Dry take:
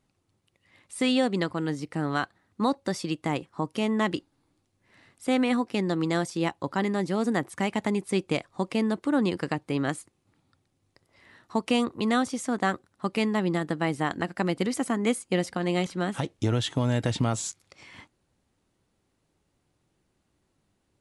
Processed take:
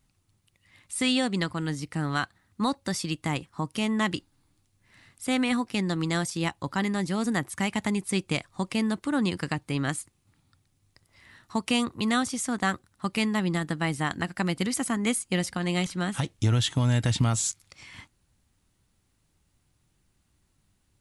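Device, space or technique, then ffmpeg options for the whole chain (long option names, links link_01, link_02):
smiley-face EQ: -af "lowshelf=frequency=86:gain=8,equalizer=frequency=460:width_type=o:width=1.9:gain=-8.5,highshelf=frequency=8600:gain=8,volume=2.5dB"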